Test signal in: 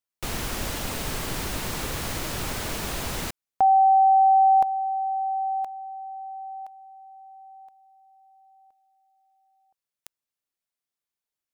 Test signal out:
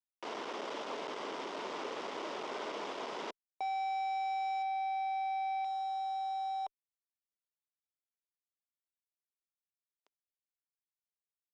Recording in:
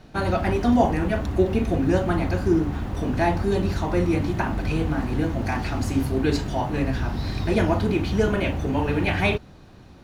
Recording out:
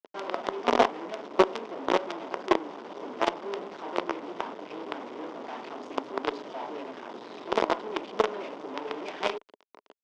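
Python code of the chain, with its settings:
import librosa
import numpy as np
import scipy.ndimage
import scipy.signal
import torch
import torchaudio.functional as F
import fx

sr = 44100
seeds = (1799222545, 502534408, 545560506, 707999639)

y = fx.quant_companded(x, sr, bits=2)
y = fx.cabinet(y, sr, low_hz=270.0, low_slope=24, high_hz=4600.0, hz=(420.0, 610.0, 990.0, 1700.0, 2500.0, 4200.0), db=(6, 4, 6, -5, -4, -8))
y = fx.cheby_harmonics(y, sr, harmonics=(3, 5, 6, 7), levels_db=(-17, -30, -40, -36), full_scale_db=4.5)
y = y * 10.0 ** (-7.5 / 20.0)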